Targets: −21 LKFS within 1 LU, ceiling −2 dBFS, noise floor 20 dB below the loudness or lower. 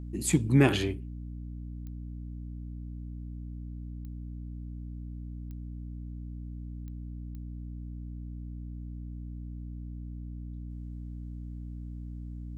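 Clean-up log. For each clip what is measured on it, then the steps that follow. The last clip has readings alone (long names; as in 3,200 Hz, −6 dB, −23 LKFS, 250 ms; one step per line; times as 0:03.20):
number of clicks 5; mains hum 60 Hz; hum harmonics up to 300 Hz; level of the hum −37 dBFS; integrated loudness −36.0 LKFS; sample peak −8.0 dBFS; target loudness −21.0 LKFS
→ click removal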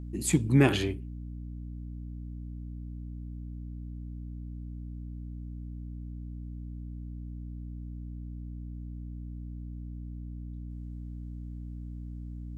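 number of clicks 0; mains hum 60 Hz; hum harmonics up to 300 Hz; level of the hum −37 dBFS
→ hum removal 60 Hz, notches 5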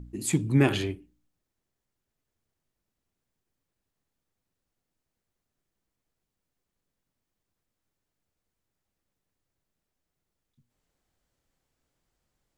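mains hum none found; integrated loudness −26.0 LKFS; sample peak −7.5 dBFS; target loudness −21.0 LKFS
→ level +5 dB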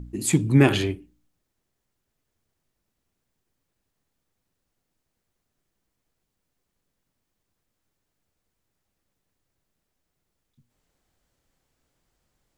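integrated loudness −21.0 LKFS; sample peak −2.5 dBFS; background noise floor −80 dBFS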